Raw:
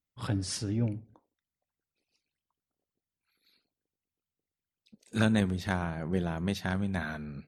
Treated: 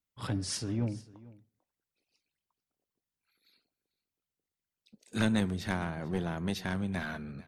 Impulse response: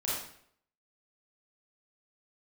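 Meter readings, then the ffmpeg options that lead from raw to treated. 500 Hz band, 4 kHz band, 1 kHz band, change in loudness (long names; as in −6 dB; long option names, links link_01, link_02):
−2.5 dB, 0.0 dB, −2.0 dB, −2.0 dB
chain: -filter_complex "[0:a]lowshelf=frequency=200:gain=-3.5,acrossover=split=290|2100[link_01][link_02][link_03];[link_02]aeval=exprs='clip(val(0),-1,0.0106)':channel_layout=same[link_04];[link_01][link_04][link_03]amix=inputs=3:normalize=0,aecho=1:1:445:0.0891"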